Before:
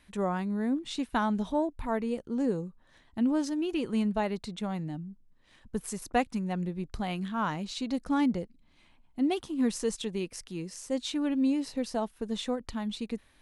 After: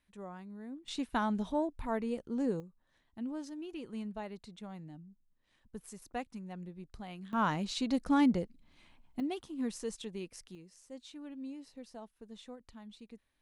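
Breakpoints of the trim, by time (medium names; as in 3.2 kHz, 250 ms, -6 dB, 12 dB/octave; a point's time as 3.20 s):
-16 dB
from 0.88 s -4 dB
from 2.60 s -12.5 dB
from 7.33 s 0 dB
from 9.20 s -8.5 dB
from 10.55 s -17 dB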